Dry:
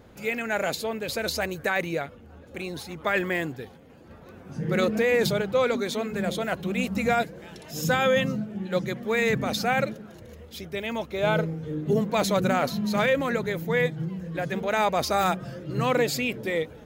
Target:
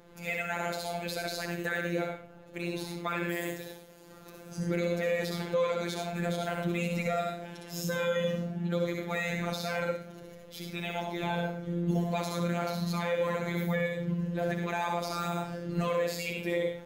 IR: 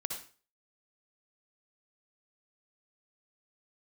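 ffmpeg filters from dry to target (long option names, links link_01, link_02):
-filter_complex "[0:a]asettb=1/sr,asplit=3[link_01][link_02][link_03];[link_01]atrim=end=3.294[link_04];[link_02]atrim=start=3.29:end=4.6,asetpts=PTS-STARTPTS,afade=type=in:duration=0.004:curve=qsin,afade=type=out:start_time=1.306:duration=0.004:curve=qsin,bass=frequency=250:gain=-4,treble=frequency=4000:gain=14[link_05];[link_03]atrim=start=4.596[link_06];[link_04][link_05]acrossfade=duration=0.004:curve1=hsin:curve2=qsin[link_07];[link_07][link_06]acrossfade=duration=0.004:curve1=qsin:curve2=hsin[link_08];[1:a]atrim=start_sample=2205[link_09];[link_08][link_09]afir=irnorm=-1:irlink=0,afftfilt=real='hypot(re,im)*cos(PI*b)':imag='0':win_size=1024:overlap=0.75,alimiter=limit=-17.5dB:level=0:latency=1:release=218"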